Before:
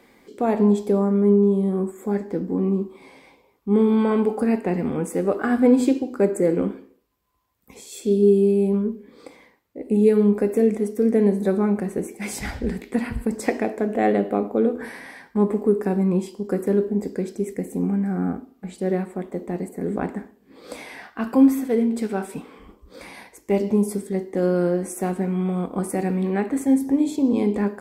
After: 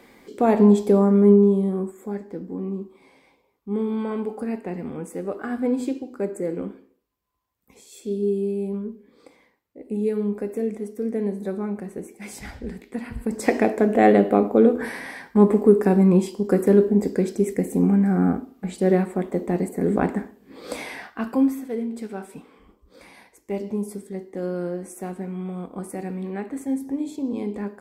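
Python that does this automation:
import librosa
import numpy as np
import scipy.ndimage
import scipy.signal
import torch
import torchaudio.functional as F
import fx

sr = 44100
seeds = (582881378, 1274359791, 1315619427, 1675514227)

y = fx.gain(x, sr, db=fx.line((1.3, 3.0), (2.23, -7.5), (13.03, -7.5), (13.59, 4.5), (20.87, 4.5), (21.59, -7.5)))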